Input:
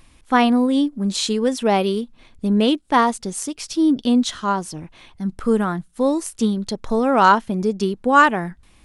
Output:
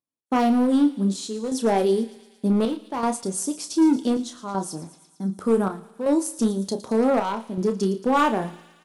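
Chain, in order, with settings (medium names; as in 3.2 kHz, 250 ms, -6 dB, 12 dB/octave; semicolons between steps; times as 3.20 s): gate -42 dBFS, range -38 dB; high-pass 210 Hz 12 dB/octave; peaking EQ 2.3 kHz -13.5 dB 1.7 oct; in parallel at 0 dB: peak limiter -15.5 dBFS, peak gain reduction 9.5 dB; on the sum: flange 0.3 Hz, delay 7 ms, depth 6.4 ms, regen -70%; overload inside the chain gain 15 dB; square tremolo 0.66 Hz, depth 60%, duty 75%; doubling 31 ms -9 dB; feedback echo behind a high-pass 113 ms, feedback 69%, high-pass 2.6 kHz, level -14 dB; on a send at -19 dB: reverberation RT60 1.0 s, pre-delay 53 ms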